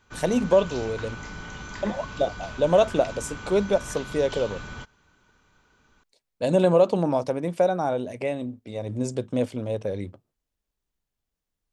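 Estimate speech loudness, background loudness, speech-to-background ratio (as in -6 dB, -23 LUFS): -25.0 LUFS, -38.0 LUFS, 13.0 dB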